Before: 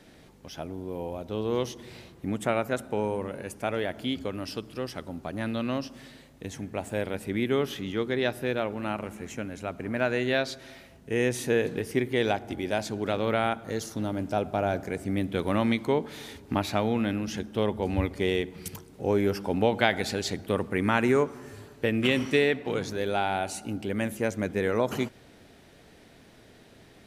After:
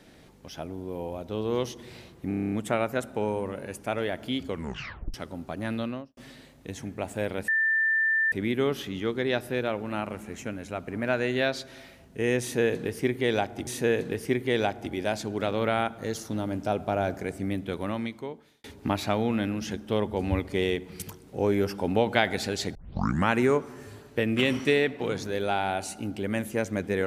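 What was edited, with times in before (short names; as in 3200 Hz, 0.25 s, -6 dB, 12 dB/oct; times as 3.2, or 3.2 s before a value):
2.28 stutter 0.03 s, 9 plays
4.25 tape stop 0.65 s
5.52–5.93 studio fade out
7.24 add tone 1780 Hz -21 dBFS 0.84 s
11.33–12.59 loop, 2 plays
14.9–16.3 fade out
20.41 tape start 0.54 s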